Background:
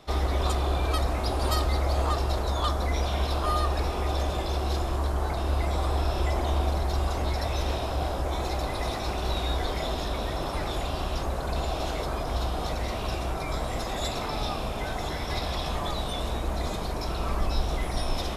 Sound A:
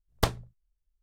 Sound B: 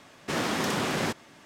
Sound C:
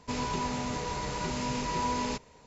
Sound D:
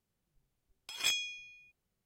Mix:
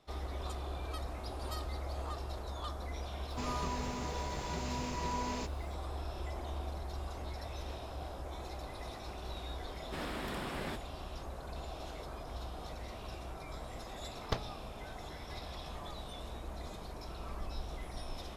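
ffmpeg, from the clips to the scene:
ffmpeg -i bed.wav -i cue0.wav -i cue1.wav -i cue2.wav -filter_complex "[0:a]volume=-14.5dB[link_01];[3:a]acrusher=bits=9:mix=0:aa=0.000001[link_02];[2:a]equalizer=frequency=6100:width=3.1:gain=-13.5[link_03];[1:a]afwtdn=0.00708[link_04];[link_02]atrim=end=2.46,asetpts=PTS-STARTPTS,volume=-7dB,afade=type=in:duration=0.004:curve=hsin,afade=type=out:start_time=2.456:duration=0.004:curve=hsin,adelay=145089S[link_05];[link_03]atrim=end=1.45,asetpts=PTS-STARTPTS,volume=-12.5dB,afade=type=in:duration=0.004:curve=hsin,afade=type=out:start_time=1.446:duration=0.004:curve=hsin,adelay=9640[link_06];[link_04]atrim=end=1.02,asetpts=PTS-STARTPTS,volume=-9.5dB,afade=type=in:duration=0.004:curve=hsin,afade=type=out:start_time=1.016:duration=0.004:curve=hsin,adelay=14090[link_07];[link_01][link_05][link_06][link_07]amix=inputs=4:normalize=0" out.wav

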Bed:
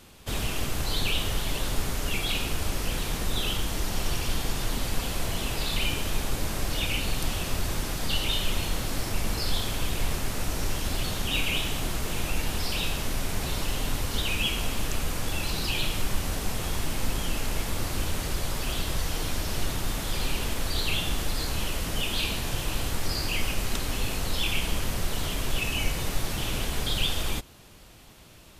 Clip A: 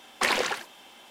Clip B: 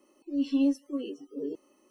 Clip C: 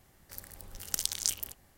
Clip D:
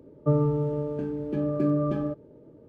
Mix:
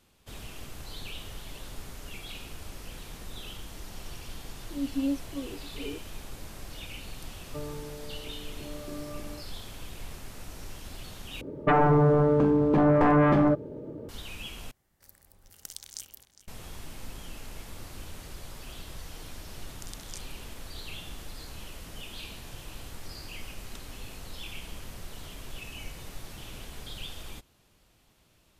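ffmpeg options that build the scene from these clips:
ffmpeg -i bed.wav -i cue0.wav -i cue1.wav -i cue2.wav -i cue3.wav -filter_complex "[4:a]asplit=2[link_01][link_02];[3:a]asplit=2[link_03][link_04];[0:a]volume=-13.5dB[link_05];[link_01]lowshelf=frequency=280:gain=-10.5[link_06];[link_02]aeval=exprs='0.224*sin(PI/2*3.55*val(0)/0.224)':channel_layout=same[link_07];[link_03]asplit=2[link_08][link_09];[link_09]adelay=408.2,volume=-11dB,highshelf=frequency=4000:gain=-9.18[link_10];[link_08][link_10]amix=inputs=2:normalize=0[link_11];[link_04]lowpass=frequency=11000:width=0.5412,lowpass=frequency=11000:width=1.3066[link_12];[link_05]asplit=3[link_13][link_14][link_15];[link_13]atrim=end=11.414[link_16];[link_07]atrim=end=2.68,asetpts=PTS-STARTPTS,volume=-4dB[link_17];[link_14]atrim=start=14.086:end=14.714[link_18];[link_11]atrim=end=1.77,asetpts=PTS-STARTPTS,volume=-11dB[link_19];[link_15]atrim=start=16.476[link_20];[2:a]atrim=end=1.9,asetpts=PTS-STARTPTS,volume=-4dB,afade=type=in:duration=0.004:curve=hsin,afade=type=out:start_time=1.896:duration=0.004:curve=hsin,adelay=4430[link_21];[link_06]atrim=end=2.68,asetpts=PTS-STARTPTS,volume=-11.5dB,afade=type=in:duration=0.004:curve=hsin,afade=type=out:start_time=2.676:duration=0.004:curve=hsin,adelay=7280[link_22];[link_12]atrim=end=1.77,asetpts=PTS-STARTPTS,volume=-14.5dB,afade=type=in:duration=0.004:curve=hsin,afade=type=out:start_time=1.766:duration=0.004:curve=hsin,adelay=18880[link_23];[link_16][link_17]acrossfade=duration=0.004:curve1=hsin:curve2=hsin[link_24];[link_24][link_18]acrossfade=duration=0.004:curve1=hsin:curve2=hsin[link_25];[link_25][link_19]acrossfade=duration=0.004:curve1=hsin:curve2=hsin[link_26];[link_26][link_20]acrossfade=duration=0.004:curve1=hsin:curve2=hsin[link_27];[link_27][link_21][link_22][link_23]amix=inputs=4:normalize=0" out.wav

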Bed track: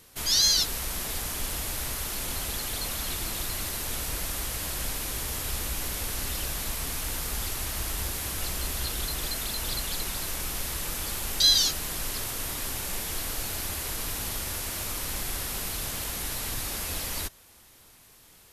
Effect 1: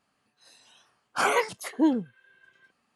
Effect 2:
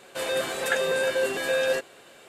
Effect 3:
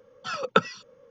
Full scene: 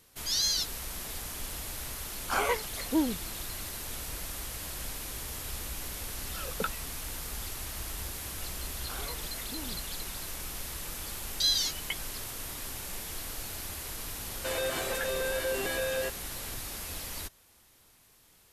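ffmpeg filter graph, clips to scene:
ffmpeg -i bed.wav -i cue0.wav -i cue1.wav -i cue2.wav -filter_complex "[1:a]asplit=2[link_01][link_02];[3:a]asplit=2[link_03][link_04];[0:a]volume=-6.5dB[link_05];[link_03]acrossover=split=760|5000[link_06][link_07][link_08];[link_06]adelay=70[link_09];[link_07]adelay=110[link_10];[link_09][link_10][link_08]amix=inputs=3:normalize=0[link_11];[link_02]acompressor=threshold=-30dB:ratio=6:attack=3.2:release=140:knee=1:detection=peak[link_12];[link_04]lowpass=frequency=3000:width_type=q:width=0.5098,lowpass=frequency=3000:width_type=q:width=0.6013,lowpass=frequency=3000:width_type=q:width=0.9,lowpass=frequency=3000:width_type=q:width=2.563,afreqshift=-3500[link_13];[2:a]alimiter=limit=-22.5dB:level=0:latency=1:release=83[link_14];[link_01]atrim=end=2.95,asetpts=PTS-STARTPTS,volume=-5dB,afade=type=in:duration=0.004:curve=hsin,afade=type=out:start_time=2.946:duration=0.004:curve=hsin,adelay=1130[link_15];[link_11]atrim=end=1.1,asetpts=PTS-STARTPTS,volume=-11dB,afade=type=in:duration=0.004:curve=hsin,afade=type=out:start_time=1.096:duration=0.004:curve=hsin,adelay=5970[link_16];[link_12]atrim=end=2.95,asetpts=PTS-STARTPTS,volume=-11dB,afade=type=in:duration=0.004:curve=hsin,afade=type=out:start_time=2.946:duration=0.004:curve=hsin,adelay=7730[link_17];[link_13]atrim=end=1.1,asetpts=PTS-STARTPTS,volume=-16.5dB,afade=type=in:duration=0.004:curve=hsin,afade=type=out:start_time=1.096:duration=0.004:curve=hsin,adelay=11340[link_18];[link_14]atrim=end=2.28,asetpts=PTS-STARTPTS,volume=-1.5dB,afade=type=in:duration=0.004:curve=hsin,afade=type=out:start_time=2.276:duration=0.004:curve=hsin,adelay=14290[link_19];[link_05][link_15][link_16][link_17][link_18][link_19]amix=inputs=6:normalize=0" out.wav

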